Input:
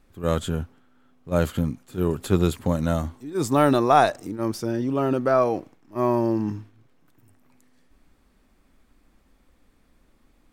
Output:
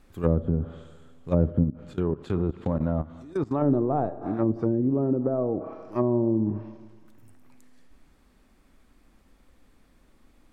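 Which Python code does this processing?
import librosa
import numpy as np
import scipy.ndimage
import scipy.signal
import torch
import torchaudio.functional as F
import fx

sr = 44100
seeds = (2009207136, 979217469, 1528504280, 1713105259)

p1 = fx.rider(x, sr, range_db=4, speed_s=0.5)
p2 = x + (p1 * librosa.db_to_amplitude(1.5))
p3 = fx.rev_schroeder(p2, sr, rt60_s=1.4, comb_ms=28, drr_db=13.5)
p4 = fx.level_steps(p3, sr, step_db=19, at=(1.63, 3.61), fade=0.02)
p5 = fx.moving_average(p4, sr, points=13, at=(5.17, 5.59))
p6 = fx.env_lowpass_down(p5, sr, base_hz=400.0, full_db=-13.0)
y = p6 * librosa.db_to_amplitude(-5.5)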